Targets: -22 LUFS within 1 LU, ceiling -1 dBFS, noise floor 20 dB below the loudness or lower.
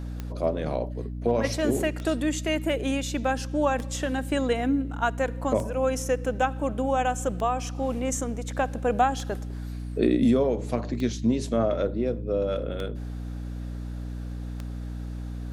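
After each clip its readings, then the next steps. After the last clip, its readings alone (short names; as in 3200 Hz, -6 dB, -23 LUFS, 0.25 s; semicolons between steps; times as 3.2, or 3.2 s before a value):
clicks 9; hum 60 Hz; harmonics up to 300 Hz; hum level -31 dBFS; loudness -27.5 LUFS; peak -9.5 dBFS; loudness target -22.0 LUFS
-> de-click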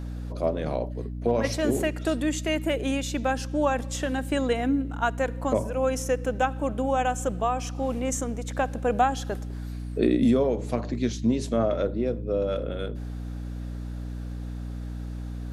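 clicks 0; hum 60 Hz; harmonics up to 300 Hz; hum level -31 dBFS
-> de-hum 60 Hz, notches 5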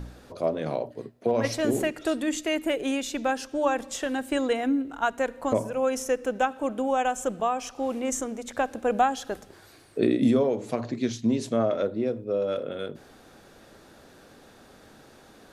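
hum none; loudness -27.5 LUFS; peak -10.0 dBFS; loudness target -22.0 LUFS
-> gain +5.5 dB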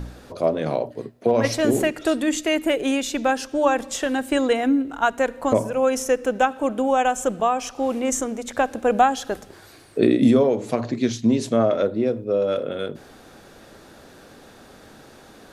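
loudness -22.0 LUFS; peak -4.5 dBFS; noise floor -48 dBFS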